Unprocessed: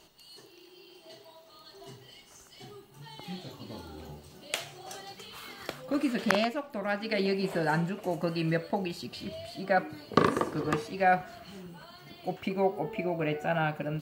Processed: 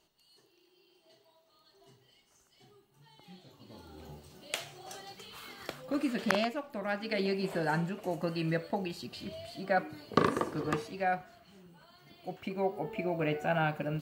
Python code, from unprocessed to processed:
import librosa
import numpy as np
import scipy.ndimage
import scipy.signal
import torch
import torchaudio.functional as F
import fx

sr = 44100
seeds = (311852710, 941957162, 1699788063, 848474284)

y = fx.gain(x, sr, db=fx.line((3.46, -13.0), (4.14, -3.0), (10.81, -3.0), (11.45, -12.0), (13.22, -1.0)))